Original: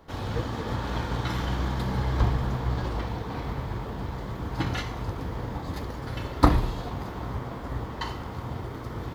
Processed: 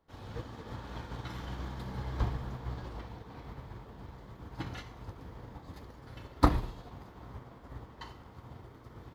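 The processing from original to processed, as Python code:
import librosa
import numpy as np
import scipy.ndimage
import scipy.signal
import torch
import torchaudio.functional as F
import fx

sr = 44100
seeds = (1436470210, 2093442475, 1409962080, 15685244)

y = fx.upward_expand(x, sr, threshold_db=-44.0, expansion=1.5)
y = y * librosa.db_to_amplitude(-4.5)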